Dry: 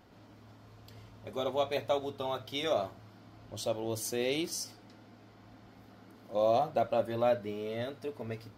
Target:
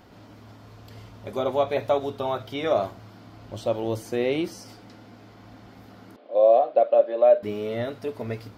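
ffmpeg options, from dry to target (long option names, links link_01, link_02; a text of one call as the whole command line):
ffmpeg -i in.wav -filter_complex "[0:a]acrossover=split=2500[link_01][link_02];[link_02]acompressor=threshold=-54dB:ratio=4:attack=1:release=60[link_03];[link_01][link_03]amix=inputs=2:normalize=0,asettb=1/sr,asplit=3[link_04][link_05][link_06];[link_04]atrim=end=6.164[link_07];[link_05]atrim=start=6.16:end=7.43,asetpts=PTS-STARTPTS,afade=type=in:duration=0.004:curve=qsin,afade=type=out:start_time=1.266:duration=0.004:curve=qsin,highpass=frequency=340:width=0.5412,highpass=frequency=340:width=1.3066,equalizer=frequency=370:width_type=q:width=4:gain=-4,equalizer=frequency=580:width_type=q:width=4:gain=6,equalizer=frequency=950:width_type=q:width=4:gain=-9,equalizer=frequency=1400:width_type=q:width=4:gain=-8,equalizer=frequency=2000:width_type=q:width=4:gain=-8,equalizer=frequency=2900:width_type=q:width=4:gain=-4,lowpass=frequency=3200:width=0.5412,lowpass=frequency=3200:width=1.3066[link_08];[link_06]atrim=start=7.426[link_09];[link_07][link_08]acrossfade=duration=0.004:curve1=hsin:curve2=qsin[link_10];[link_10][link_09]acrossfade=duration=0.004:curve1=qsin:curve2=hsin,volume=8dB" out.wav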